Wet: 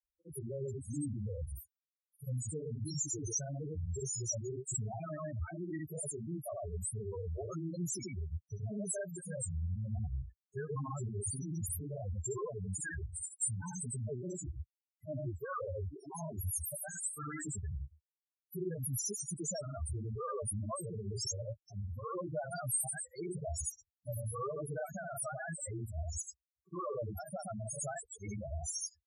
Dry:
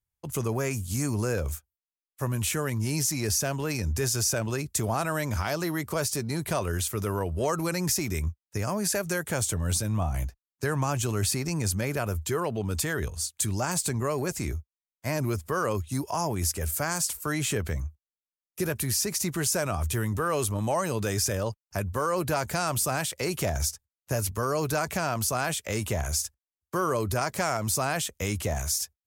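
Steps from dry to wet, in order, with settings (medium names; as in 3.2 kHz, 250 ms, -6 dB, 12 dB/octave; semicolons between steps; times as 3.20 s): pre-emphasis filter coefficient 0.8; granulator 127 ms, grains 21 per s, spray 83 ms, pitch spread up and down by 0 st; loudest bins only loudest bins 4; trim +8 dB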